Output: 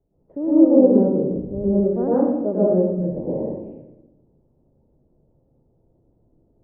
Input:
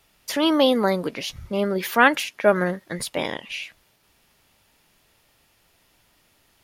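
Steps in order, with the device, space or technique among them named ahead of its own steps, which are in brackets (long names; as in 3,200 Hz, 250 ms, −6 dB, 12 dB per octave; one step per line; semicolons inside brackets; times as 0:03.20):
next room (low-pass filter 520 Hz 24 dB per octave; convolution reverb RT60 1.0 s, pre-delay 100 ms, DRR −9 dB)
level −3 dB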